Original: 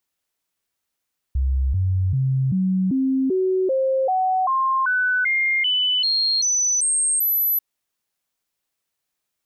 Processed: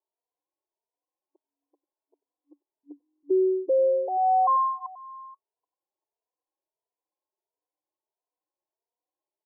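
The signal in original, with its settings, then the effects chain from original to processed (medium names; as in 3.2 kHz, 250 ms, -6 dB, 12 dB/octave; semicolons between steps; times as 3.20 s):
stepped sine 66.2 Hz up, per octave 2, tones 16, 0.39 s, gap 0.00 s -17 dBFS
FFT band-pass 290–1100 Hz; delay 483 ms -21.5 dB; endless flanger 3.1 ms +1.5 Hz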